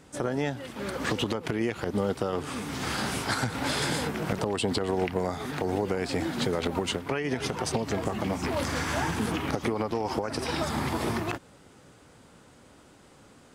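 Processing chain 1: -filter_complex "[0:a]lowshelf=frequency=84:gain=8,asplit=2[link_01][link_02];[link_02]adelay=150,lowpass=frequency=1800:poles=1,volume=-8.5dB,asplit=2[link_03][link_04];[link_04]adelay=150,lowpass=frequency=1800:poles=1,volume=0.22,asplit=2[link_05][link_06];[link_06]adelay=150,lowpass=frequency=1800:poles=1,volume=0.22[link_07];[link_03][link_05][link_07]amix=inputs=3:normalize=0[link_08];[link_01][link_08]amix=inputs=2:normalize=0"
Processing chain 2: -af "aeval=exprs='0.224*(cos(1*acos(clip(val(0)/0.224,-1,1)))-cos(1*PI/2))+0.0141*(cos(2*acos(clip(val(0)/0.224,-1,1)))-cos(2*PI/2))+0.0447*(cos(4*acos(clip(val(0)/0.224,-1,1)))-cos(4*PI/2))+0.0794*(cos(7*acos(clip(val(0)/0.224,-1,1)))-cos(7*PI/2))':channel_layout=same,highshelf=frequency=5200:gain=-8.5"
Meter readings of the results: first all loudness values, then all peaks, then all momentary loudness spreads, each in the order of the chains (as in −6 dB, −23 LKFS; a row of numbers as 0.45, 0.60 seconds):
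−28.5, −30.5 LKFS; −11.5, −10.5 dBFS; 4, 5 LU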